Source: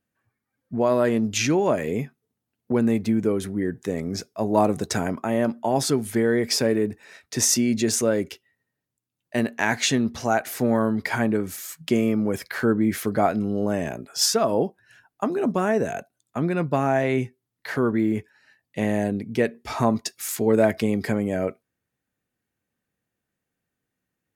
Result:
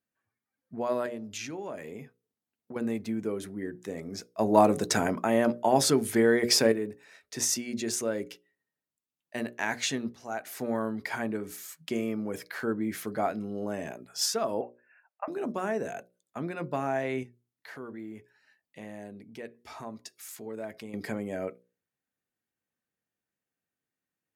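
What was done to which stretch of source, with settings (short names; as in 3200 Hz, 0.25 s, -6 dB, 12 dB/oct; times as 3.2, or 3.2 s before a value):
1.06–2.76 compressor 2:1, threshold -31 dBFS
4.39–6.72 gain +8 dB
10.15–10.59 fade in, from -14 dB
14.61–15.28 brick-wall FIR band-pass 480–2800 Hz
17.23–20.94 compressor 1.5:1, threshold -45 dBFS
whole clip: low shelf 130 Hz -10 dB; notches 60/120/180/240/300/360/420/480/540/600 Hz; gain -7.5 dB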